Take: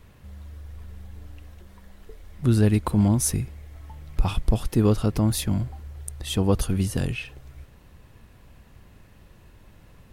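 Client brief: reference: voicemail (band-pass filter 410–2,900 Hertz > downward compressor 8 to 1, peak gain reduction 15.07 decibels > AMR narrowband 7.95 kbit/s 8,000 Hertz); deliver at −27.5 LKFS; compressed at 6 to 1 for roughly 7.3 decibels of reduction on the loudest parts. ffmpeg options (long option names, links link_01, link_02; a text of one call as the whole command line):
ffmpeg -i in.wav -af "acompressor=threshold=-21dB:ratio=6,highpass=410,lowpass=2900,acompressor=threshold=-40dB:ratio=8,volume=20.5dB" -ar 8000 -c:a libopencore_amrnb -b:a 7950 out.amr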